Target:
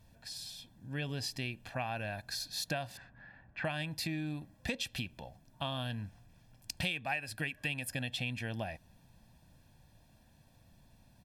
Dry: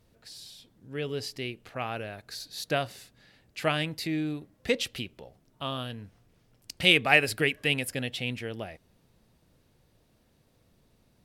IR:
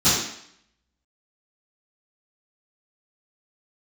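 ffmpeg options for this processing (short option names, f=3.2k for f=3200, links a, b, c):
-filter_complex "[0:a]asettb=1/sr,asplit=3[a][b][c];[a]atrim=end=2.974[d];[b]atrim=start=2.97:end=3.65,asetpts=PTS-STARTPTS,afade=t=in:d=0.004:c=qsin,afade=t=out:st=0.676:d=0.004:c=qsin,lowpass=f=1.5k:t=q:w=2[e];[c]atrim=start=3.646[f];[d][e]acrossfade=d=0.004:c1=hsin:c2=qsin[g];[g][f]acrossfade=d=0.004:c1=qsin:c2=hsin,aecho=1:1:1.2:0.71,acompressor=threshold=-33dB:ratio=8"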